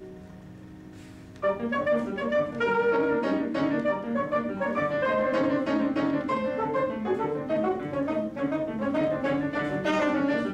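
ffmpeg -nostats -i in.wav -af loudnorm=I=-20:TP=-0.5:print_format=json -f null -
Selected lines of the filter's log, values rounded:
"input_i" : "-27.2",
"input_tp" : "-14.0",
"input_lra" : "1.8",
"input_thresh" : "-37.6",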